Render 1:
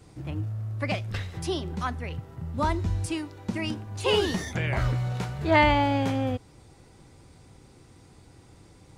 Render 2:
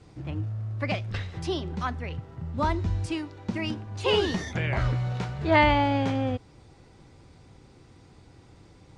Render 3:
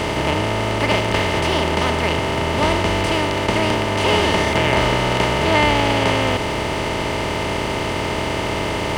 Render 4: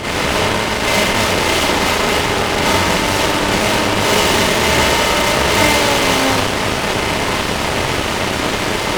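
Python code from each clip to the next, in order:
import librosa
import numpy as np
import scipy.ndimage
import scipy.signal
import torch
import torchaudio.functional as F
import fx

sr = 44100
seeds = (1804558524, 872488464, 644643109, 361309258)

y1 = scipy.signal.sosfilt(scipy.signal.butter(2, 5900.0, 'lowpass', fs=sr, output='sos'), x)
y2 = fx.bin_compress(y1, sr, power=0.2)
y2 = fx.high_shelf(y2, sr, hz=5900.0, db=10.0)
y2 = np.sign(y2) * np.maximum(np.abs(y2) - 10.0 ** (-37.0 / 20.0), 0.0)
y3 = fx.rev_schroeder(y2, sr, rt60_s=0.74, comb_ms=30, drr_db=-7.5)
y3 = 10.0 ** (-8.0 / 20.0) * np.tanh(y3 / 10.0 ** (-8.0 / 20.0))
y3 = fx.cheby_harmonics(y3, sr, harmonics=(3, 4, 5, 6), levels_db=(-11, -6, -15, -10), full_scale_db=-8.0)
y3 = F.gain(torch.from_numpy(y3), -1.0).numpy()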